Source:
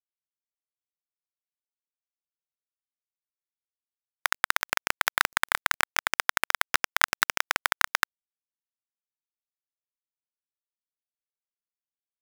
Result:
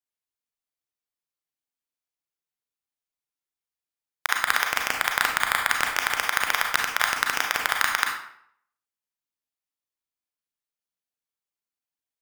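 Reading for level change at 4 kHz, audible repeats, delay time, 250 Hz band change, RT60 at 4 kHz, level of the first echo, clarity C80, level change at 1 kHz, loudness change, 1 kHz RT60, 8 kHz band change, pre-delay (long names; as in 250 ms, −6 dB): +2.5 dB, no echo audible, no echo audible, +3.0 dB, 0.50 s, no echo audible, 7.5 dB, +2.5 dB, +2.5 dB, 0.65 s, +2.0 dB, 31 ms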